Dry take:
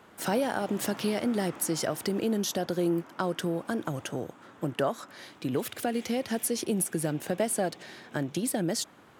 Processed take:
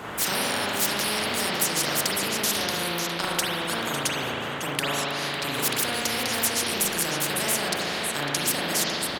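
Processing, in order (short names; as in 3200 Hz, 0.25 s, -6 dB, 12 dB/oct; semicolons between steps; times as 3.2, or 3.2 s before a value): echo 0.552 s -15 dB; spring tank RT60 1.1 s, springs 35/42 ms, chirp 40 ms, DRR -7.5 dB; spectral compressor 4:1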